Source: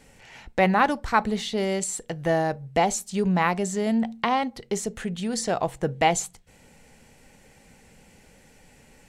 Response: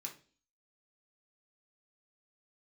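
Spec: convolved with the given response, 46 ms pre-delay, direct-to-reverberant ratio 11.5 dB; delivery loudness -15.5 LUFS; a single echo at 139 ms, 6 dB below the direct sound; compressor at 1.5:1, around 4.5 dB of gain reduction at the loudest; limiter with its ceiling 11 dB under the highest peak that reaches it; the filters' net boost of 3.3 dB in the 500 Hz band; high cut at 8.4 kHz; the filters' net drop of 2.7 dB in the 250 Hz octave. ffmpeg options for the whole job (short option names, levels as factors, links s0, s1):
-filter_complex "[0:a]lowpass=8400,equalizer=f=250:t=o:g=-5,equalizer=f=500:t=o:g=5.5,acompressor=threshold=0.0501:ratio=1.5,alimiter=limit=0.112:level=0:latency=1,aecho=1:1:139:0.501,asplit=2[s0][s1];[1:a]atrim=start_sample=2205,adelay=46[s2];[s1][s2]afir=irnorm=-1:irlink=0,volume=0.376[s3];[s0][s3]amix=inputs=2:normalize=0,volume=4.73"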